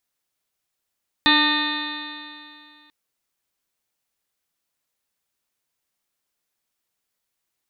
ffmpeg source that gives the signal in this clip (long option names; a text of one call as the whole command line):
ffmpeg -f lavfi -i "aevalsrc='0.1*pow(10,-3*t/2.46)*sin(2*PI*296.27*t)+0.0126*pow(10,-3*t/2.46)*sin(2*PI*594.13*t)+0.0794*pow(10,-3*t/2.46)*sin(2*PI*895.16*t)+0.0668*pow(10,-3*t/2.46)*sin(2*PI*1200.93*t)+0.0211*pow(10,-3*t/2.46)*sin(2*PI*1512.93*t)+0.133*pow(10,-3*t/2.46)*sin(2*PI*1832.64*t)+0.015*pow(10,-3*t/2.46)*sin(2*PI*2161.44*t)+0.0596*pow(10,-3*t/2.46)*sin(2*PI*2500.68*t)+0.0224*pow(10,-3*t/2.46)*sin(2*PI*2851.6*t)+0.0168*pow(10,-3*t/2.46)*sin(2*PI*3215.38*t)+0.141*pow(10,-3*t/2.46)*sin(2*PI*3593.13*t)+0.0841*pow(10,-3*t/2.46)*sin(2*PI*3985.84*t)+0.0266*pow(10,-3*t/2.46)*sin(2*PI*4394.48*t)':duration=1.64:sample_rate=44100" out.wav